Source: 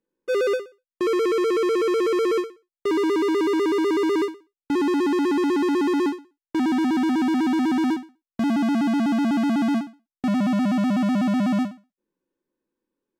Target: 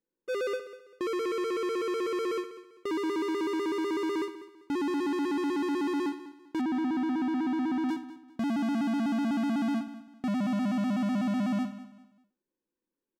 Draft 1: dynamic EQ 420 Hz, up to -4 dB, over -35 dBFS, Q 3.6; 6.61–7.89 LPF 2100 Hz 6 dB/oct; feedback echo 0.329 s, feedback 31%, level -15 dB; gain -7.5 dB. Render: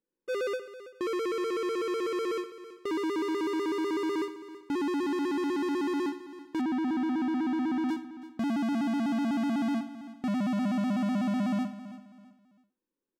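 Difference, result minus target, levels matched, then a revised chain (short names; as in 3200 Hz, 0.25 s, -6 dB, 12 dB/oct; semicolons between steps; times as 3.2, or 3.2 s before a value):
echo 0.132 s late
dynamic EQ 420 Hz, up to -4 dB, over -35 dBFS, Q 3.6; 6.61–7.89 LPF 2100 Hz 6 dB/oct; feedback echo 0.197 s, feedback 31%, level -15 dB; gain -7.5 dB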